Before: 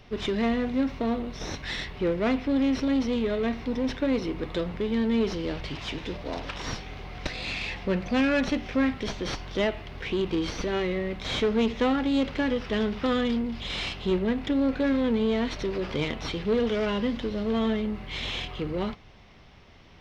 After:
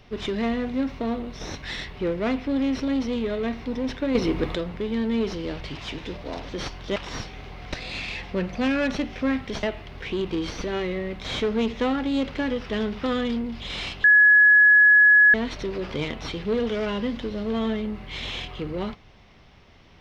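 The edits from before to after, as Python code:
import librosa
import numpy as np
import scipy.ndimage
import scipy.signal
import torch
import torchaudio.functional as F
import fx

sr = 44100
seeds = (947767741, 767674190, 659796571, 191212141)

y = fx.edit(x, sr, fx.clip_gain(start_s=4.15, length_s=0.4, db=7.0),
    fx.move(start_s=9.16, length_s=0.47, to_s=6.49),
    fx.bleep(start_s=14.04, length_s=1.3, hz=1690.0, db=-11.0), tone=tone)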